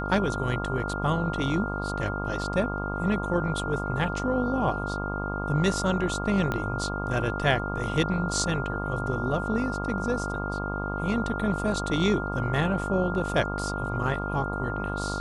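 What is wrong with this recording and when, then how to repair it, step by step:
mains buzz 50 Hz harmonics 25 −32 dBFS
whistle 1,400 Hz −33 dBFS
0:06.52: click −15 dBFS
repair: click removal
notch filter 1,400 Hz, Q 30
hum removal 50 Hz, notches 25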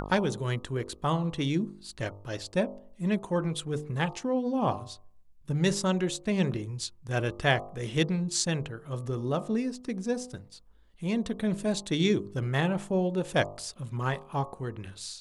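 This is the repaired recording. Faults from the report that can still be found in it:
0:06.52: click

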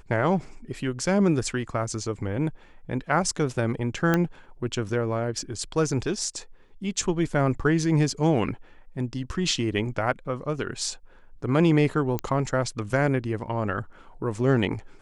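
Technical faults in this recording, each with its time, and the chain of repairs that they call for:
0:04.14: click −9 dBFS
0:12.19: click −13 dBFS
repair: click removal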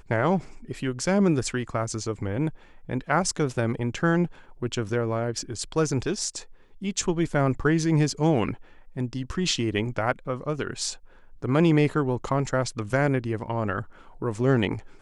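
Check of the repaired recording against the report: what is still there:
none of them is left

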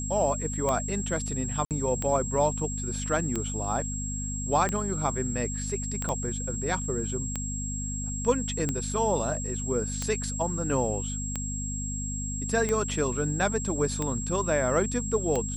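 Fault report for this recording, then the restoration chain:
mains hum 50 Hz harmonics 5 −34 dBFS
scratch tick 45 rpm −15 dBFS
whistle 7,600 Hz −34 dBFS
0:01.65–0:01.71: drop-out 58 ms
0:06.09: click −18 dBFS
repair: click removal
hum removal 50 Hz, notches 5
notch filter 7,600 Hz, Q 30
repair the gap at 0:01.65, 58 ms

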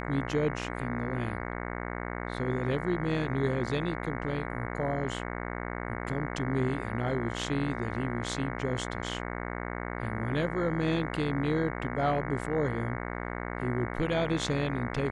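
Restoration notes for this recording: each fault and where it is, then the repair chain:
mains buzz 60 Hz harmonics 37 −36 dBFS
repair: hum removal 60 Hz, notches 37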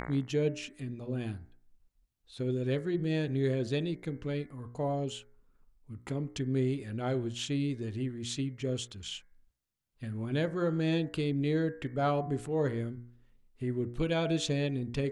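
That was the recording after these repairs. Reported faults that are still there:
none of them is left

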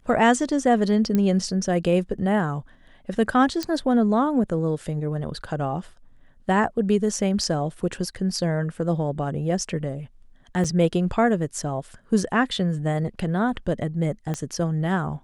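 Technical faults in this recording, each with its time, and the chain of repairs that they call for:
0:01.15: click −11 dBFS
0:03.63: click −13 dBFS
0:10.64–0:10.65: drop-out 5.4 ms
0:14.34: click −15 dBFS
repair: click removal
repair the gap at 0:10.64, 5.4 ms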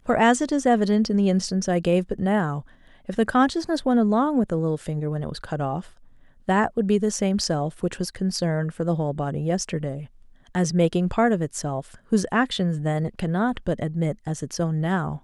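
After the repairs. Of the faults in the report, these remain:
0:03.63: click
0:14.34: click

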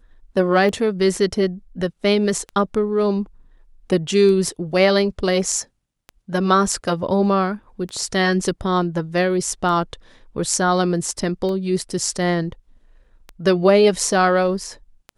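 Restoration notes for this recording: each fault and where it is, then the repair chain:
scratch tick 33 1/3 rpm −18 dBFS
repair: click removal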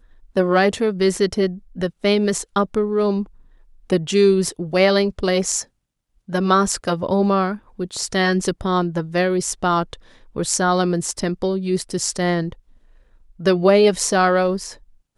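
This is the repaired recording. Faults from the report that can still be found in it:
none of them is left

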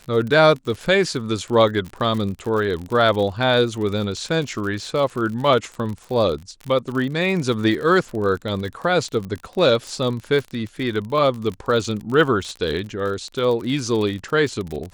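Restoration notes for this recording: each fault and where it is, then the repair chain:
surface crackle 49 per second −27 dBFS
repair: click removal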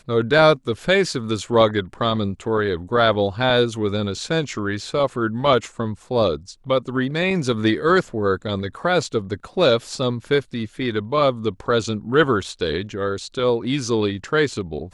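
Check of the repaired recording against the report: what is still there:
none of them is left

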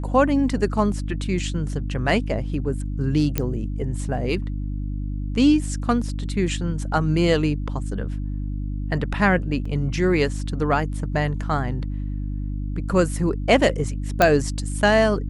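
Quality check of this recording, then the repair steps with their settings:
mains hum 50 Hz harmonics 6 −27 dBFS
0:03.38: click −7 dBFS
0:09.65: drop-out 4.7 ms
0:14.22: click −2 dBFS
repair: click removal
hum removal 50 Hz, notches 6
repair the gap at 0:09.65, 4.7 ms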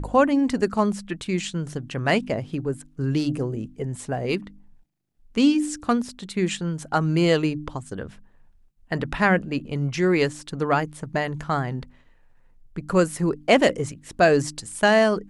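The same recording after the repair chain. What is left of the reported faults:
none of them is left

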